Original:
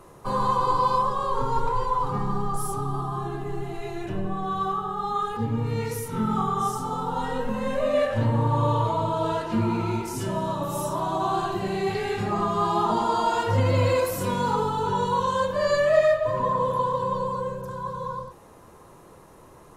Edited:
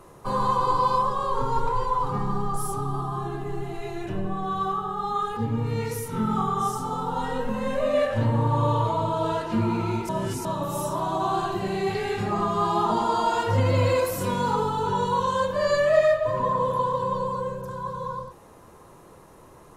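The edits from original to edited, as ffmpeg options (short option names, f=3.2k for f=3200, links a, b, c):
-filter_complex "[0:a]asplit=3[a][b][c];[a]atrim=end=10.092[d];[b]atrim=start=10.088:end=10.452,asetpts=PTS-STARTPTS,areverse[e];[c]atrim=start=10.448[f];[d][e]acrossfade=d=0.004:c1=hsin:c2=hsin[g];[g][f]acrossfade=d=0.004:c1=hsin:c2=hsin"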